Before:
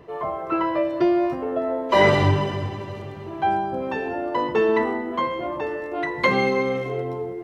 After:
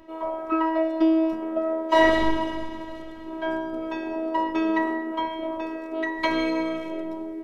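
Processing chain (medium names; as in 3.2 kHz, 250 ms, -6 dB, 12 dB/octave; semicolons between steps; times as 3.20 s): robot voice 323 Hz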